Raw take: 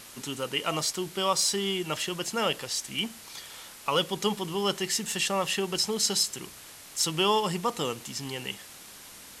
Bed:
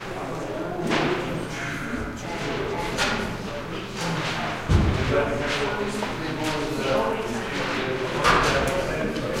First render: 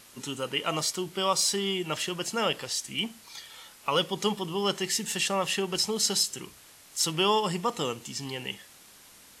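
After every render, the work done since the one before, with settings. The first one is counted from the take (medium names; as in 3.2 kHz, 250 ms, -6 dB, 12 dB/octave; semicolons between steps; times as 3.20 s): noise print and reduce 6 dB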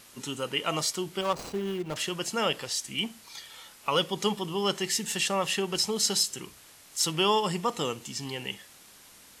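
1.21–1.96 s: median filter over 25 samples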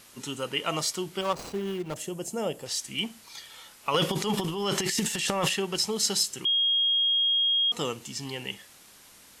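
1.94–2.66 s: high-order bell 2.3 kHz -12.5 dB 2.7 oct; 3.94–5.50 s: transient shaper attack -7 dB, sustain +12 dB; 6.45–7.72 s: bleep 3.26 kHz -21 dBFS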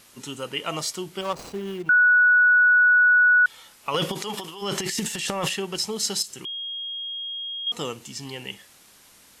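1.89–3.46 s: bleep 1.47 kHz -13 dBFS; 4.13–4.61 s: high-pass 280 Hz -> 1.2 kHz 6 dB/octave; 6.22–7.67 s: compression 5:1, threshold -32 dBFS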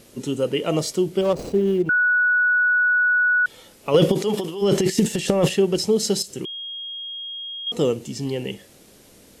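resonant low shelf 710 Hz +10.5 dB, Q 1.5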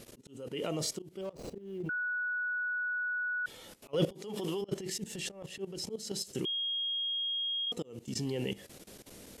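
level held to a coarse grid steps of 17 dB; slow attack 388 ms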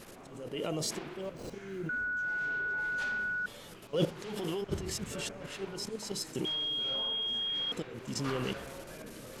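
add bed -21.5 dB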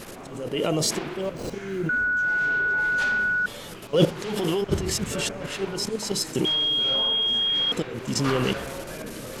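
trim +10.5 dB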